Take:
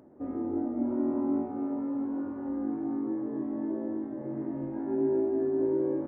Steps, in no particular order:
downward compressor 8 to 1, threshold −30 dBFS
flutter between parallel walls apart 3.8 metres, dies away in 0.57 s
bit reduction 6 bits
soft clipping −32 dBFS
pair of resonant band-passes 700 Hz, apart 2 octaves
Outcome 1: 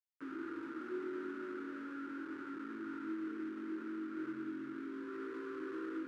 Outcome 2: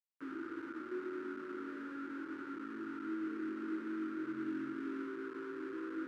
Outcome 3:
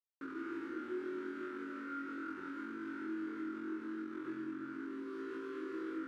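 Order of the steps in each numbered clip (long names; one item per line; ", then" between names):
soft clipping, then flutter between parallel walls, then bit reduction, then downward compressor, then pair of resonant band-passes
downward compressor, then soft clipping, then flutter between parallel walls, then bit reduction, then pair of resonant band-passes
soft clipping, then bit reduction, then flutter between parallel walls, then downward compressor, then pair of resonant band-passes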